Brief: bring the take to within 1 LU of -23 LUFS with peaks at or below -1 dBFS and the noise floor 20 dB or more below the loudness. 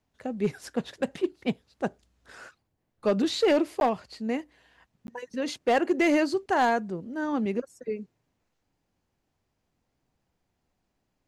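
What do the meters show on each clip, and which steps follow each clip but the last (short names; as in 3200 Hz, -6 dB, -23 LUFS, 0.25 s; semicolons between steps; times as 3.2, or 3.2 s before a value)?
clipped 0.5%; flat tops at -16.5 dBFS; dropouts 2; longest dropout 11 ms; loudness -28.0 LUFS; peak -16.5 dBFS; loudness target -23.0 LUFS
-> clip repair -16.5 dBFS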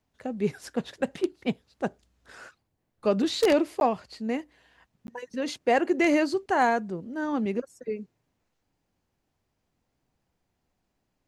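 clipped 0.0%; dropouts 2; longest dropout 11 ms
-> interpolate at 3.8/5.07, 11 ms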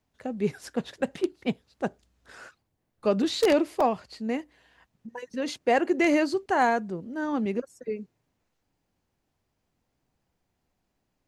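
dropouts 0; loudness -27.5 LUFS; peak -7.5 dBFS; loudness target -23.0 LUFS
-> gain +4.5 dB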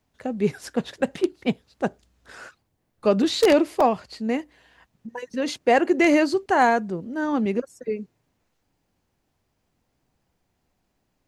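loudness -23.0 LUFS; peak -3.0 dBFS; noise floor -74 dBFS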